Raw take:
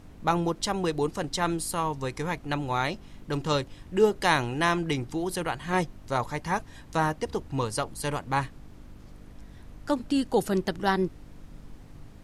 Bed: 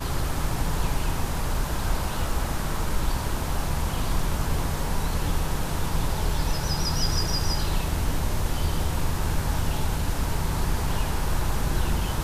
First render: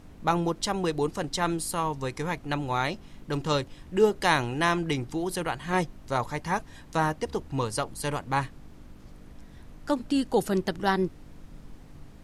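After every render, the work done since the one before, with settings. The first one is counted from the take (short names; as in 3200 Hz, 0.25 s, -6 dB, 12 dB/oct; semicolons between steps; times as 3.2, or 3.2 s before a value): de-hum 50 Hz, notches 2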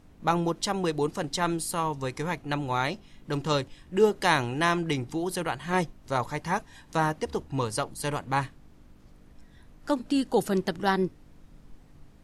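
noise print and reduce 6 dB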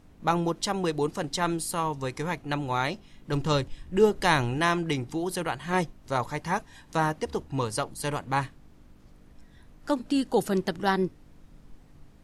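3.32–4.58 low shelf 96 Hz +11.5 dB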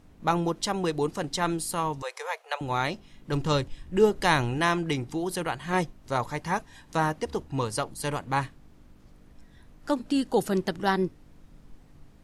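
2.02–2.61 steep high-pass 460 Hz 72 dB/oct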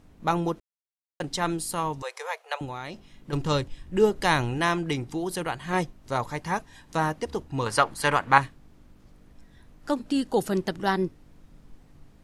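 0.6–1.2 mute; 2.65–3.33 compressor 4:1, threshold -33 dBFS; 7.66–8.38 bell 1500 Hz +13 dB 2.5 oct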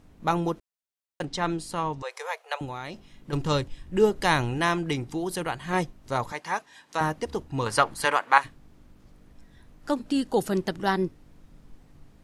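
1.25–2.11 air absorption 69 m; 6.32–7.01 weighting filter A; 8.04–8.44 HPF 320 Hz -> 660 Hz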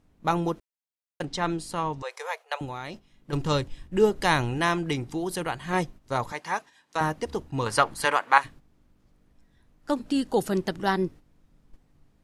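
gate -41 dBFS, range -9 dB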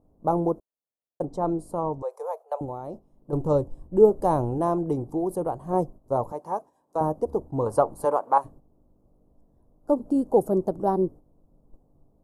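EQ curve 190 Hz 0 dB, 610 Hz +7 dB, 1100 Hz -4 dB, 1900 Hz -30 dB, 3500 Hz -29 dB, 11000 Hz -6 dB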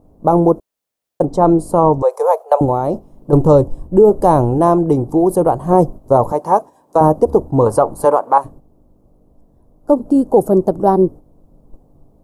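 vocal rider 2 s; maximiser +13 dB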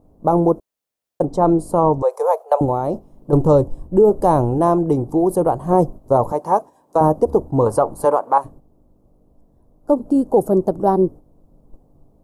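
gain -3.5 dB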